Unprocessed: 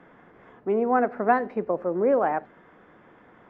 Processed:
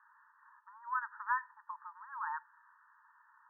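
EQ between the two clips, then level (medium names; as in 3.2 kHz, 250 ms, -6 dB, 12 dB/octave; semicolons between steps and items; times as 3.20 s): brick-wall FIR band-pass 860–1900 Hz; distance through air 380 m; -4.0 dB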